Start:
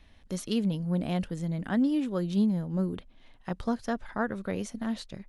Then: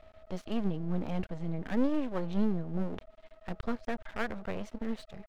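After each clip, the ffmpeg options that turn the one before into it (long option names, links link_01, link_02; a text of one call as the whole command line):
ffmpeg -i in.wav -af "lowpass=3000,aeval=exprs='val(0)+0.00224*sin(2*PI*640*n/s)':channel_layout=same,aeval=exprs='max(val(0),0)':channel_layout=same,volume=1.5dB" out.wav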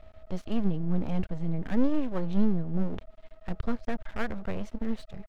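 ffmpeg -i in.wav -af "lowshelf=frequency=180:gain=9" out.wav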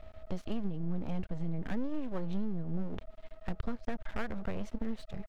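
ffmpeg -i in.wav -af "acompressor=threshold=-30dB:ratio=5,volume=1dB" out.wav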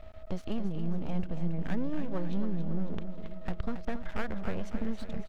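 ffmpeg -i in.wav -af "aecho=1:1:275|550|825|1100|1375|1650:0.355|0.192|0.103|0.0559|0.0302|0.0163,volume=2dB" out.wav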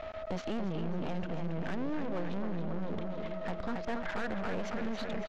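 ffmpeg -i in.wav -filter_complex "[0:a]aresample=16000,asoftclip=type=tanh:threshold=-25.5dB,aresample=44100,asplit=2[link_01][link_02];[link_02]highpass=frequency=720:poles=1,volume=22dB,asoftclip=type=tanh:threshold=-25dB[link_03];[link_01][link_03]amix=inputs=2:normalize=0,lowpass=frequency=2400:poles=1,volume=-6dB" out.wav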